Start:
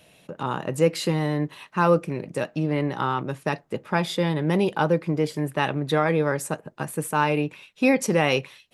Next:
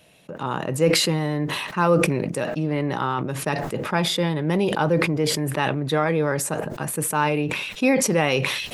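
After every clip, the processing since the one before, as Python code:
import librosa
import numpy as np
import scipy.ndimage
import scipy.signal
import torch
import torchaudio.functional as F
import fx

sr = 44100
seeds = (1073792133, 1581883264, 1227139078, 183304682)

y = fx.sustainer(x, sr, db_per_s=35.0)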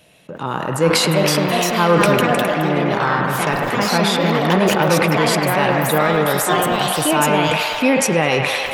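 y = fx.echo_pitch(x, sr, ms=476, semitones=3, count=2, db_per_echo=-3.0)
y = fx.echo_wet_bandpass(y, sr, ms=103, feedback_pct=82, hz=1300.0, wet_db=-4.5)
y = y * librosa.db_to_amplitude(3.0)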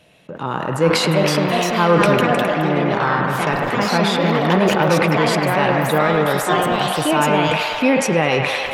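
y = fx.high_shelf(x, sr, hz=6900.0, db=-10.5)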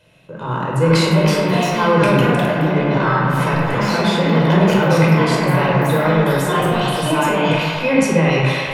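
y = fx.room_shoebox(x, sr, seeds[0], volume_m3=1900.0, walls='furnished', distance_m=5.0)
y = y * librosa.db_to_amplitude(-5.5)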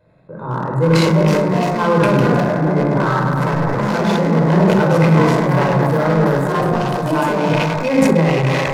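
y = fx.wiener(x, sr, points=15)
y = fx.sustainer(y, sr, db_per_s=22.0)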